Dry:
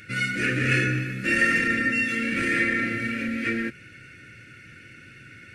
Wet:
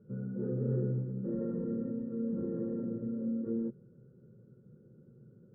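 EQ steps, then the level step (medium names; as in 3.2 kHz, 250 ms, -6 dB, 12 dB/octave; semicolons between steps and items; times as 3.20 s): high-pass 66 Hz; steep low-pass 800 Hz 36 dB/octave; static phaser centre 440 Hz, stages 8; -1.5 dB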